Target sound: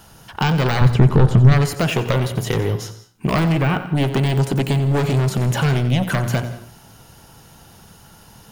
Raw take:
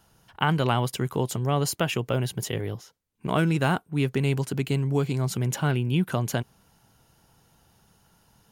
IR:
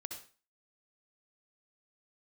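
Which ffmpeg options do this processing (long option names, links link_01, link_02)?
-filter_complex "[0:a]deesser=0.9,aeval=exprs='0.299*sin(PI/2*3.16*val(0)/0.299)':channel_layout=same,asettb=1/sr,asplit=3[link_01][link_02][link_03];[link_01]atrim=end=3.524[link_04];[link_02]atrim=start=3.52:end=3.95,asetpts=PTS-STARTPTS,afade=type=in:duration=0.004:curve=qsin,afade=type=out:start_time=0.426:duration=0.004:curve=qsin,highshelf=frequency=3300:width_type=q:width=1.5:gain=-7[link_05];[link_03]atrim=start=3.946[link_06];[link_04][link_05]acrossfade=duration=0.004:curve1=hsin:curve2=qsin[link_07];[link_07][link_06]acrossfade=duration=0.004:curve1=qsin:curve2=hsin,asettb=1/sr,asplit=3[link_08][link_09][link_10];[link_08]atrim=end=4.854[link_11];[link_09]atrim=start=4.85:end=5.65,asetpts=PTS-STARTPTS,afade=type=in:duration=0.004:curve=qsin,afade=type=out:start_time=0.796:duration=0.004:curve=qsin,asoftclip=type=hard:threshold=-14dB[link_12];[link_10]atrim=start=5.646[link_13];[link_11][link_12]acrossfade=duration=0.004:curve1=hsin:curve2=qsin[link_14];[link_14][link_13]acrossfade=duration=0.004:curve1=qsin:curve2=hsin,acompressor=threshold=-17dB:ratio=6,asettb=1/sr,asplit=3[link_15][link_16][link_17];[link_15]atrim=end=0.814[link_18];[link_16]atrim=start=0.81:end=1.52,asetpts=PTS-STARTPTS,afade=type=in:duration=0.004:curve=qsin,afade=type=out:start_time=0.706:duration=0.004:curve=qsin,aemphasis=mode=reproduction:type=bsi[link_19];[link_17]atrim=start=1.516[link_20];[link_18][link_19]acrossfade=duration=0.004:curve1=hsin:curve2=qsin[link_21];[link_21][link_20]acrossfade=duration=0.004:curve1=qsin:curve2=hsin,bandreject=frequency=59.46:width_type=h:width=4,bandreject=frequency=118.92:width_type=h:width=4,bandreject=frequency=178.38:width_type=h:width=4,bandreject=frequency=237.84:width_type=h:width=4,bandreject=frequency=297.3:width_type=h:width=4,bandreject=frequency=356.76:width_type=h:width=4,bandreject=frequency=416.22:width_type=h:width=4,bandreject=frequency=475.68:width_type=h:width=4,bandreject=frequency=535.14:width_type=h:width=4,bandreject=frequency=594.6:width_type=h:width=4,bandreject=frequency=654.06:width_type=h:width=4,bandreject=frequency=713.52:width_type=h:width=4,bandreject=frequency=772.98:width_type=h:width=4,bandreject=frequency=832.44:width_type=h:width=4,bandreject=frequency=891.9:width_type=h:width=4,bandreject=frequency=951.36:width_type=h:width=4,bandreject=frequency=1010.82:width_type=h:width=4,bandreject=frequency=1070.28:width_type=h:width=4,bandreject=frequency=1129.74:width_type=h:width=4,bandreject=frequency=1189.2:width_type=h:width=4,bandreject=frequency=1248.66:width_type=h:width=4,bandreject=frequency=1308.12:width_type=h:width=4,bandreject=frequency=1367.58:width_type=h:width=4,bandreject=frequency=1427.04:width_type=h:width=4,bandreject=frequency=1486.5:width_type=h:width=4,bandreject=frequency=1545.96:width_type=h:width=4,bandreject=frequency=1605.42:width_type=h:width=4,bandreject=frequency=1664.88:width_type=h:width=4,asplit=2[link_22][link_23];[1:a]atrim=start_sample=2205,adelay=90[link_24];[link_23][link_24]afir=irnorm=-1:irlink=0,volume=-9dB[link_25];[link_22][link_25]amix=inputs=2:normalize=0,volume=1.5dB"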